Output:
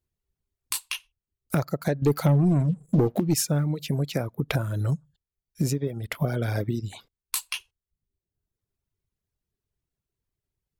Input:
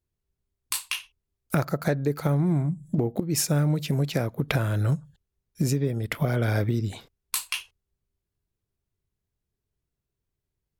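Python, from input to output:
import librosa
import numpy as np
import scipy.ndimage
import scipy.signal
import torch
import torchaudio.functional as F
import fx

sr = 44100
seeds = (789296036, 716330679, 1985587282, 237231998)

y = fx.leveller(x, sr, passes=2, at=(2.02, 3.34))
y = fx.dynamic_eq(y, sr, hz=1700.0, q=0.81, threshold_db=-43.0, ratio=4.0, max_db=-3)
y = fx.dereverb_blind(y, sr, rt60_s=0.87)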